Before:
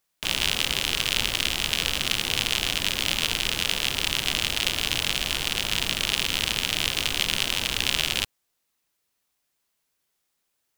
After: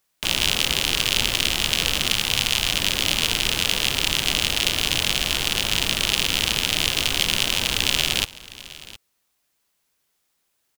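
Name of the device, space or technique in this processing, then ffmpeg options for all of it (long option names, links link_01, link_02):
one-band saturation: -filter_complex "[0:a]acrossover=split=560|2500[link_01][link_02][link_03];[link_02]asoftclip=type=tanh:threshold=-23dB[link_04];[link_01][link_04][link_03]amix=inputs=3:normalize=0,asettb=1/sr,asplit=3[link_05][link_06][link_07];[link_05]atrim=end=2.134[link_08];[link_06]atrim=start=2.13:end=2.73,asetpts=PTS-STARTPTS,afade=type=in:duration=0.004:curve=qsin,afade=type=out:start_time=0.596:duration=0.004:curve=qsin,equalizer=frequency=350:width_type=o:width=1:gain=-6[link_09];[link_07]atrim=start=2.726[link_10];[link_08][link_09]acrossfade=duration=0.004:curve1=hsin:curve2=qsin[link_11];[link_11][link_10]acrossfade=duration=0.004:curve1=qsin:curve2=hsin,aecho=1:1:714:0.119,volume=4.5dB"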